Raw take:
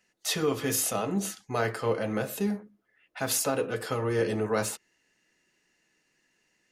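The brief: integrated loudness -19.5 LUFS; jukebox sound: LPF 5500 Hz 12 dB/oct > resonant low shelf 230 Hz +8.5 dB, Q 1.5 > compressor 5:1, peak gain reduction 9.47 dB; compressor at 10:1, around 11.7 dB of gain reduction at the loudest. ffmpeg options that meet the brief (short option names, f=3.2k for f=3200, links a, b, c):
-af "acompressor=threshold=-34dB:ratio=10,lowpass=5.5k,lowshelf=f=230:t=q:w=1.5:g=8.5,acompressor=threshold=-37dB:ratio=5,volume=22.5dB"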